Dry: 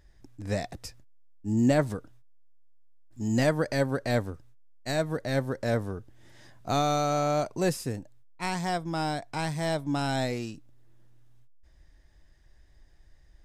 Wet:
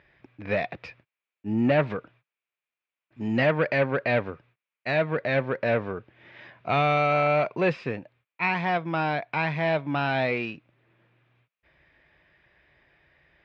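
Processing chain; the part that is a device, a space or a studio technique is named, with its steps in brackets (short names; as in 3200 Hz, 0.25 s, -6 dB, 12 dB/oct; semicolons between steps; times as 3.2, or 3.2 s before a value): overdrive pedal into a guitar cabinet (overdrive pedal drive 17 dB, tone 2100 Hz, clips at -12 dBFS; speaker cabinet 86–3500 Hz, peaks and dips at 150 Hz +3 dB, 290 Hz -4 dB, 800 Hz -4 dB, 2400 Hz +10 dB)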